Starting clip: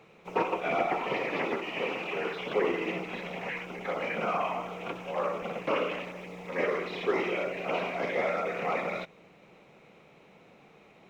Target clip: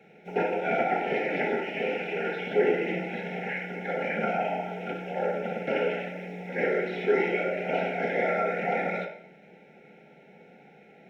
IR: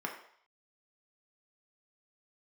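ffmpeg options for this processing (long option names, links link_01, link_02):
-filter_complex "[0:a]asuperstop=centerf=1100:order=20:qfactor=2.4[link_01];[1:a]atrim=start_sample=2205[link_02];[link_01][link_02]afir=irnorm=-1:irlink=0"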